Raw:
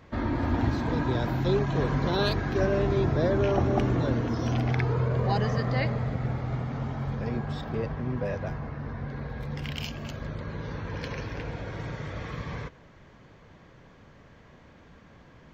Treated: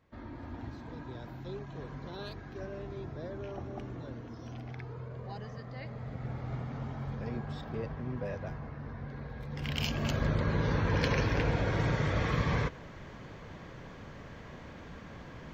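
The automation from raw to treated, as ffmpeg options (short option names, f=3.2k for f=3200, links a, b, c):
-af "volume=6dB,afade=t=in:st=5.8:d=0.71:silence=0.316228,afade=t=in:st=9.51:d=0.64:silence=0.237137"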